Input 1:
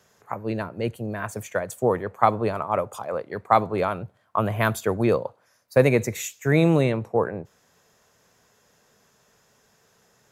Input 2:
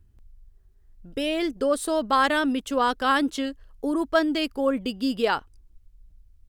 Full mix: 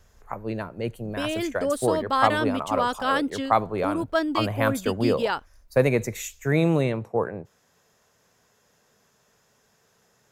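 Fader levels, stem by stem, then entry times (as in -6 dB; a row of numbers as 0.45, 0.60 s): -2.5, -2.5 dB; 0.00, 0.00 s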